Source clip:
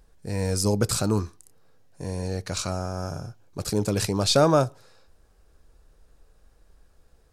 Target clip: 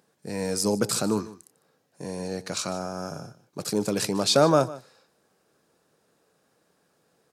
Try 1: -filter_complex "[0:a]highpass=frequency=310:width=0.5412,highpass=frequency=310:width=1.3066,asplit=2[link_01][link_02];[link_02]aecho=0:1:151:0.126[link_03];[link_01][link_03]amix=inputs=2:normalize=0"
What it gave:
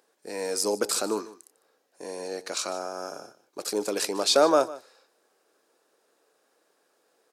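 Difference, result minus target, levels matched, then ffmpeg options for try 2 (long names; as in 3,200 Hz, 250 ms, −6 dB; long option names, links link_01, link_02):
125 Hz band −18.5 dB
-filter_complex "[0:a]highpass=frequency=150:width=0.5412,highpass=frequency=150:width=1.3066,asplit=2[link_01][link_02];[link_02]aecho=0:1:151:0.126[link_03];[link_01][link_03]amix=inputs=2:normalize=0"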